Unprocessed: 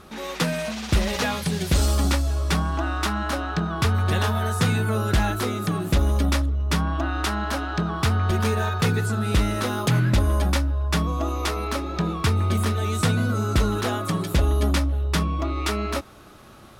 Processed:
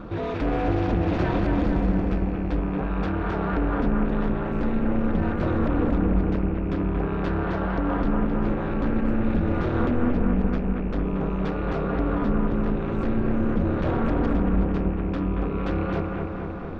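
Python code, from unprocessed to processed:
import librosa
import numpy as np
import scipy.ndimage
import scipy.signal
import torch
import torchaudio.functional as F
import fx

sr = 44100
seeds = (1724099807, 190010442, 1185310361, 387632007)

p1 = fx.rattle_buzz(x, sr, strikes_db=-26.0, level_db=-27.0)
p2 = fx.peak_eq(p1, sr, hz=75.0, db=9.5, octaves=2.6)
p3 = fx.over_compress(p2, sr, threshold_db=-23.0, ratio=-1.0)
p4 = p2 + (p3 * 10.0 ** (3.0 / 20.0))
p5 = fx.notch_comb(p4, sr, f0_hz=1000.0)
p6 = p5 * np.sin(2.0 * np.pi * 120.0 * np.arange(len(p5)) / sr)
p7 = 10.0 ** (-19.0 / 20.0) * np.tanh(p6 / 10.0 ** (-19.0 / 20.0))
p8 = fx.spacing_loss(p7, sr, db_at_10k=41)
y = p8 + fx.echo_bbd(p8, sr, ms=229, stages=4096, feedback_pct=71, wet_db=-3.5, dry=0)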